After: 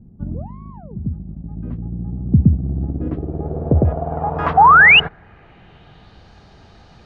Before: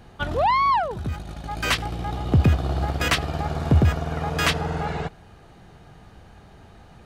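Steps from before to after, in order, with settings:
low-pass filter sweep 210 Hz → 5,000 Hz, 0:02.64–0:06.33
sound drawn into the spectrogram rise, 0:04.57–0:05.00, 730–3,000 Hz −9 dBFS
level +1.5 dB

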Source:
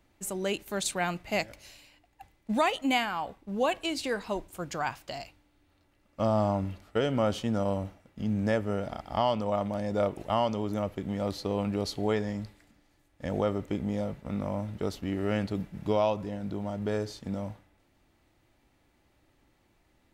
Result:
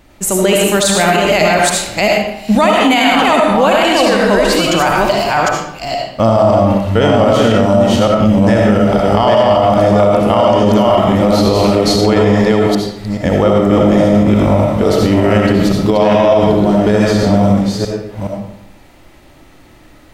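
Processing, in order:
delay that plays each chunk backwards 425 ms, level −2 dB
pitch vibrato 2.6 Hz 20 cents
comb and all-pass reverb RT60 0.76 s, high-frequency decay 0.8×, pre-delay 35 ms, DRR −0.5 dB
boost into a limiter +20 dB
level −1 dB

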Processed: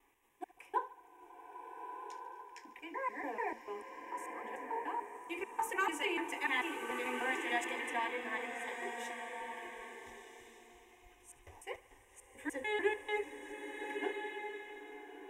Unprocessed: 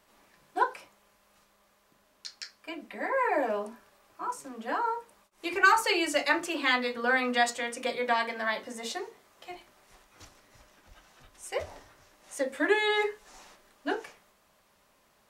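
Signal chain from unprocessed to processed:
slices reordered back to front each 147 ms, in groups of 2
phaser with its sweep stopped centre 910 Hz, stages 8
on a send: feedback echo with a high-pass in the loop 73 ms, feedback 64%, level −18 dB
on the sum: slow-attack reverb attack 1,410 ms, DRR 4.5 dB
level −7.5 dB

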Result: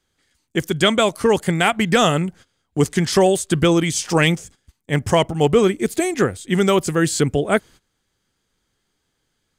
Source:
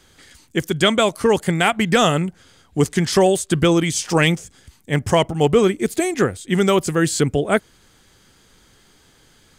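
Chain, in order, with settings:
noise gate −40 dBFS, range −18 dB

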